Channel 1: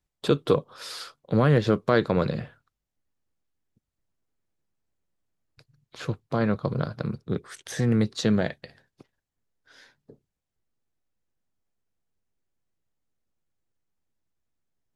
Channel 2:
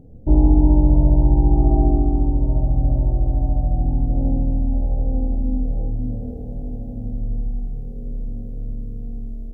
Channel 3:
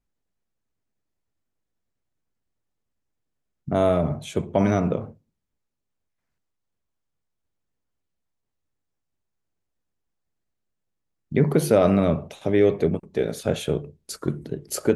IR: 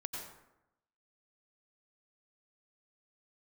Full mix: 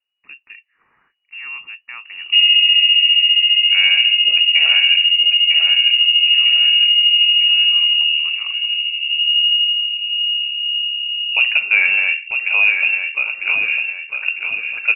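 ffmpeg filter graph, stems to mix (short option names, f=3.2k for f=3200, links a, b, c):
-filter_complex "[0:a]volume=-16dB[a];[1:a]adelay=2050,volume=-2.5dB[b];[2:a]volume=-1dB,asplit=2[c][d];[d]volume=-5.5dB[e];[a][b]amix=inputs=2:normalize=0,aecho=1:1:1.1:0.57,alimiter=limit=-8.5dB:level=0:latency=1:release=118,volume=0dB[f];[e]aecho=0:1:951|1902|2853|3804|4755|5706:1|0.44|0.194|0.0852|0.0375|0.0165[g];[c][f][g]amix=inputs=3:normalize=0,dynaudnorm=f=550:g=5:m=6dB,lowpass=f=2.5k:t=q:w=0.5098,lowpass=f=2.5k:t=q:w=0.6013,lowpass=f=2.5k:t=q:w=0.9,lowpass=f=2.5k:t=q:w=2.563,afreqshift=-2900"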